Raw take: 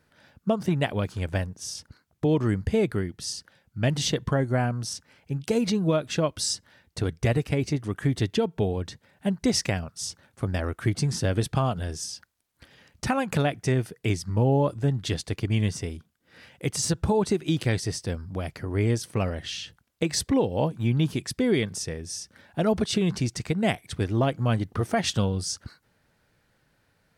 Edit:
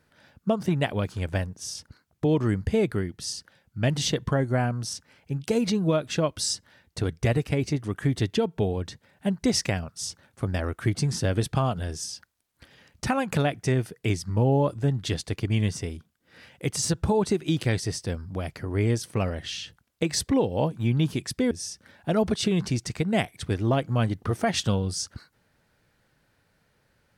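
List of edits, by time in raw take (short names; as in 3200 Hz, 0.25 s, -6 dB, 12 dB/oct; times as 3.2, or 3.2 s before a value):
21.51–22.01 cut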